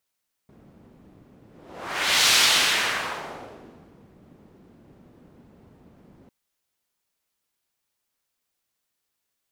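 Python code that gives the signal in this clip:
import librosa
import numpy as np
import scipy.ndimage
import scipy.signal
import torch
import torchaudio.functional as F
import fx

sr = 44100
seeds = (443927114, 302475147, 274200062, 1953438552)

y = fx.whoosh(sr, seeds[0], length_s=5.8, peak_s=1.81, rise_s=0.89, fall_s=1.85, ends_hz=220.0, peak_hz=3900.0, q=1.0, swell_db=35.0)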